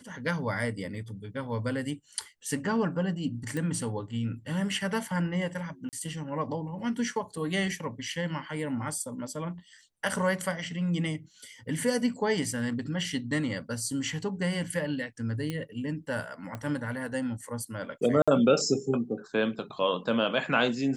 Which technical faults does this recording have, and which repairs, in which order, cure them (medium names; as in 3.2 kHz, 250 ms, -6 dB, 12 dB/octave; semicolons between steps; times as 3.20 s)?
3.57 s: pop
5.89–5.93 s: dropout 38 ms
15.50 s: pop -19 dBFS
16.55 s: pop -23 dBFS
18.22–18.28 s: dropout 56 ms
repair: de-click; interpolate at 5.89 s, 38 ms; interpolate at 18.22 s, 56 ms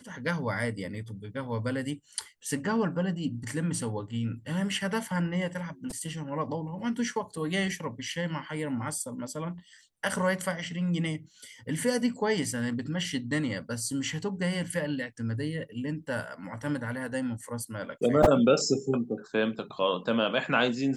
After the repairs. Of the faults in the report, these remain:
nothing left